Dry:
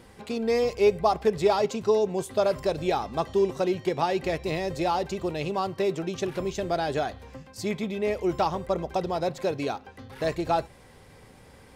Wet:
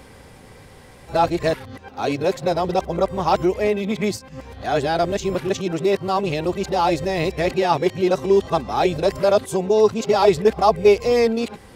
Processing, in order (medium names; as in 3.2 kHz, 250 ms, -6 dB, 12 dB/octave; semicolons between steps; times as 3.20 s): reverse the whole clip; trim +7 dB